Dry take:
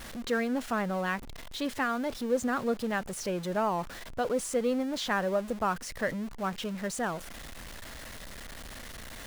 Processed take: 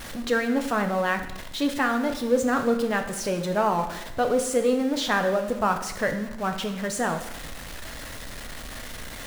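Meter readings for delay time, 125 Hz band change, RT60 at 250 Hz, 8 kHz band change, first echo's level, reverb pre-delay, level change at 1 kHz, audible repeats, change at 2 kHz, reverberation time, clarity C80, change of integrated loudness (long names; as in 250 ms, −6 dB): no echo audible, +5.0 dB, 1.0 s, +6.0 dB, no echo audible, 4 ms, +6.5 dB, no echo audible, +6.5 dB, 0.95 s, 11.5 dB, +6.0 dB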